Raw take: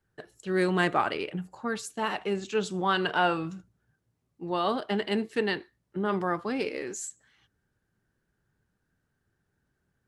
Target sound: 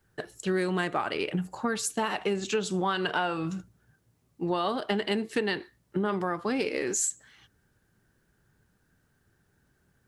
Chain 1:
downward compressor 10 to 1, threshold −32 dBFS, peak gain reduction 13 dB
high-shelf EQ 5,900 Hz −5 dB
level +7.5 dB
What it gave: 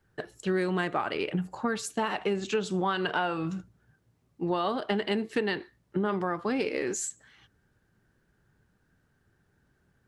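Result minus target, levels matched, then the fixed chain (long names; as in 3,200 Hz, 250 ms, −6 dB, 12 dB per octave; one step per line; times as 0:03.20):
8,000 Hz band −5.0 dB
downward compressor 10 to 1, threshold −32 dBFS, peak gain reduction 13 dB
high-shelf EQ 5,900 Hz +4.5 dB
level +7.5 dB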